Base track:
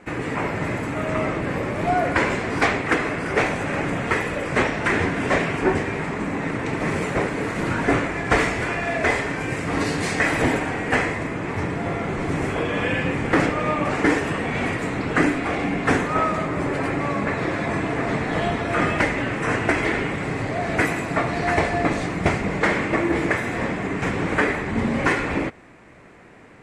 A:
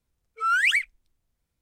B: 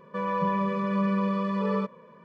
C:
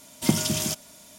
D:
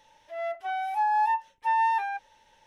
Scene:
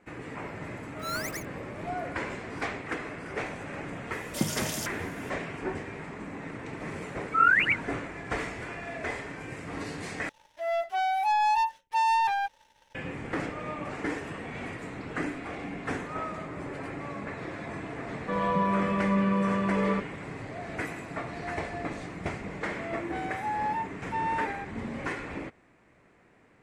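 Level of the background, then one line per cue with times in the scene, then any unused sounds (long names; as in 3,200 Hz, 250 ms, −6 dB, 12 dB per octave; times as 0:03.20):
base track −13.5 dB
0:00.61: mix in A −10 dB + gap after every zero crossing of 0.17 ms
0:04.12: mix in C −7 dB
0:06.94: mix in A + three sine waves on the formant tracks
0:10.29: overwrite with D −2.5 dB + leveller curve on the samples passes 2
0:18.14: mix in B + low-pass filter 4,200 Hz
0:22.47: mix in D −6.5 dB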